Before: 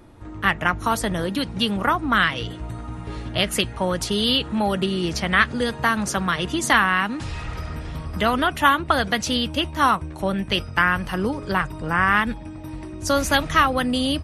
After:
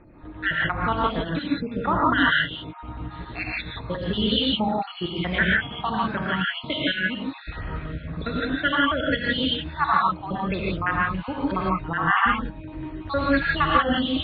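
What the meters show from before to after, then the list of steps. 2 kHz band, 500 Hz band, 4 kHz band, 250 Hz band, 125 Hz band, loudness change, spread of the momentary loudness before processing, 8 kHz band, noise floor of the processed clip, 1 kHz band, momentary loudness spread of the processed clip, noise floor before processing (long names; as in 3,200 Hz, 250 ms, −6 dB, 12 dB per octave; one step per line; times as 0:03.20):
−2.0 dB, −3.5 dB, −3.0 dB, −1.5 dB, −2.0 dB, −2.5 dB, 13 LU, below −40 dB, −40 dBFS, −2.5 dB, 13 LU, −36 dBFS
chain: time-frequency cells dropped at random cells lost 61%
Butterworth low-pass 4,100 Hz 96 dB per octave
reverb whose tail is shaped and stops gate 190 ms rising, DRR −3.5 dB
level −3 dB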